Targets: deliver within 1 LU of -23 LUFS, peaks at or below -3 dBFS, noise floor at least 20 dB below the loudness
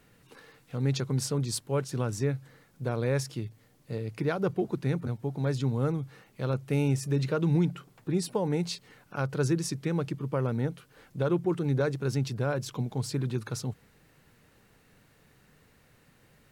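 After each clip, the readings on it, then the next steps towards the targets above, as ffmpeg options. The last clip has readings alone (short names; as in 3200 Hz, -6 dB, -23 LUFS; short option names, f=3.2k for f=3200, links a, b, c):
loudness -30.5 LUFS; peak -17.0 dBFS; loudness target -23.0 LUFS
-> -af "volume=7.5dB"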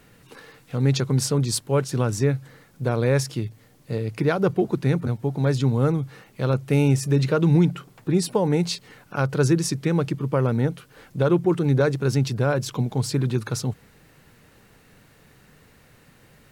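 loudness -23.0 LUFS; peak -9.5 dBFS; noise floor -55 dBFS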